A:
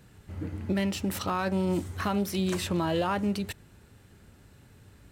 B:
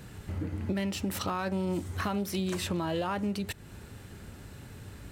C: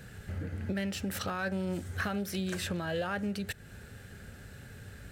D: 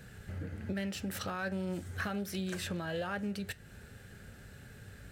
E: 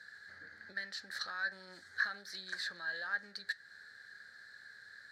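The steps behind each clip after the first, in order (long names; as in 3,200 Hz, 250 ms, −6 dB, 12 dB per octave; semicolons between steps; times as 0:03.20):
downward compressor 2.5 to 1, threshold −43 dBFS, peak gain reduction 13 dB; level +8.5 dB
thirty-one-band graphic EQ 315 Hz −8 dB, 500 Hz +3 dB, 1,000 Hz −10 dB, 1,600 Hz +9 dB; level −2 dB
flanger 1.3 Hz, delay 4.5 ms, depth 2.3 ms, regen −84%; level +1.5 dB
pair of resonant band-passes 2,700 Hz, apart 1.3 octaves; level +8.5 dB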